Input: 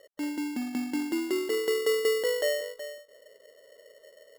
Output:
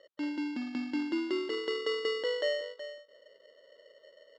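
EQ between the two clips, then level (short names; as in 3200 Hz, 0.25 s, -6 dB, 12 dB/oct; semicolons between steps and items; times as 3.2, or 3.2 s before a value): speaker cabinet 120–4700 Hz, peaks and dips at 140 Hz -4 dB, 220 Hz -6 dB, 430 Hz -7 dB, 740 Hz -8 dB, 2000 Hz -4 dB; 0.0 dB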